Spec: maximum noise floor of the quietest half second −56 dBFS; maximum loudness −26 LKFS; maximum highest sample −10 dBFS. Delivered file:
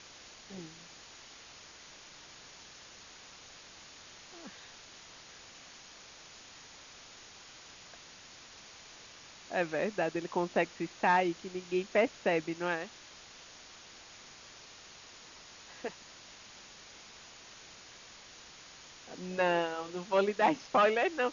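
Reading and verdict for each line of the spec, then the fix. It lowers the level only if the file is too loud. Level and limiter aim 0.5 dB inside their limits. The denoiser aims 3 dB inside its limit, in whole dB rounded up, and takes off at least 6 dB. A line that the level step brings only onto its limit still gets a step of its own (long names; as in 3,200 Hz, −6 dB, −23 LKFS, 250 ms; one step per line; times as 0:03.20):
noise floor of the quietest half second −53 dBFS: out of spec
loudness −31.5 LKFS: in spec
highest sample −15.5 dBFS: in spec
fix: broadband denoise 6 dB, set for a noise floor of −53 dBFS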